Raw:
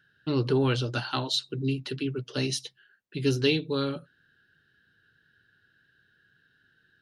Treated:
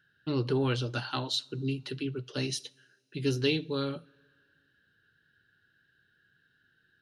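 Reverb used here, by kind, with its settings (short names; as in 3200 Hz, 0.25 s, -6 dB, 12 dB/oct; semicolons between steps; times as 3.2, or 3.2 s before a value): two-slope reverb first 0.41 s, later 2.2 s, from -18 dB, DRR 19 dB; gain -3.5 dB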